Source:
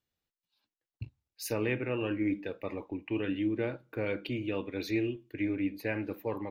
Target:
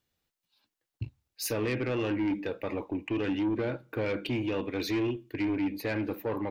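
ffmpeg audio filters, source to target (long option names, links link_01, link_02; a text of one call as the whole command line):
ffmpeg -i in.wav -filter_complex "[0:a]asplit=2[link_01][link_02];[link_02]alimiter=level_in=2dB:limit=-24dB:level=0:latency=1:release=67,volume=-2dB,volume=1dB[link_03];[link_01][link_03]amix=inputs=2:normalize=0,asoftclip=type=tanh:threshold=-24dB" out.wav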